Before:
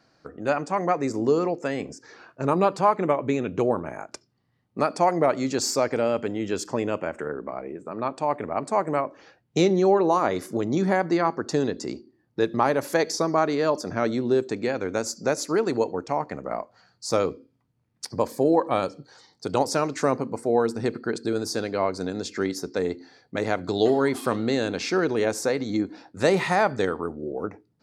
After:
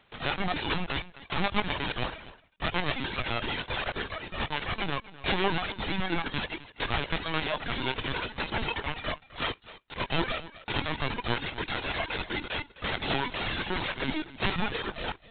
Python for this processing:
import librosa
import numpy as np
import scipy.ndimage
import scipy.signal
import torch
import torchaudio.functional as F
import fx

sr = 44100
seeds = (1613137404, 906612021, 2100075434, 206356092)

p1 = fx.envelope_flatten(x, sr, power=0.1)
p2 = fx.stretch_vocoder_free(p1, sr, factor=0.55)
p3 = fx.over_compress(p2, sr, threshold_db=-32.0, ratio=-0.5)
p4 = p2 + (p3 * 10.0 ** (-1.0 / 20.0))
p5 = fx.dereverb_blind(p4, sr, rt60_s=1.7)
p6 = p5 + fx.echo_single(p5, sr, ms=254, db=-17.0, dry=0)
y = fx.lpc_vocoder(p6, sr, seeds[0], excitation='pitch_kept', order=16)